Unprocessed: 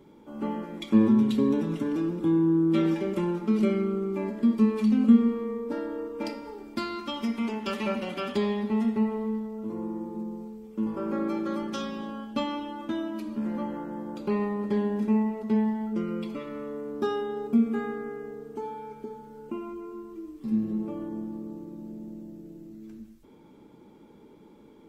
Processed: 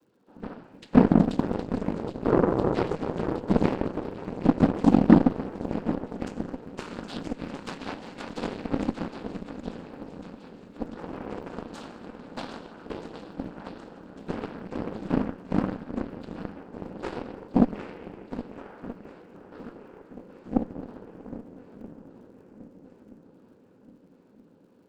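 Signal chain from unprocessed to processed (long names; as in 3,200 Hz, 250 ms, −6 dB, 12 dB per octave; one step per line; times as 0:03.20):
cochlear-implant simulation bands 8
surface crackle 100 per second −51 dBFS
feedback echo with a long and a short gap by turns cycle 1,277 ms, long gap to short 1.5 to 1, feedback 56%, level −8.5 dB
harmonic generator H 3 −27 dB, 7 −20 dB, 8 −27 dB, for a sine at −5 dBFS
level +4 dB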